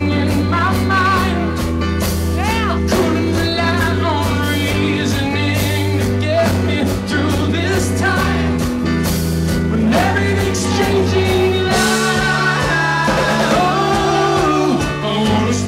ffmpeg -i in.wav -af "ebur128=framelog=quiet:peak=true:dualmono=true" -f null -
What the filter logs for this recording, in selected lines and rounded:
Integrated loudness:
  I:         -12.5 LUFS
  Threshold: -22.5 LUFS
Loudness range:
  LRA:         2.1 LU
  Threshold: -32.6 LUFS
  LRA low:   -13.3 LUFS
  LRA high:  -11.2 LUFS
True peak:
  Peak:       -2.5 dBFS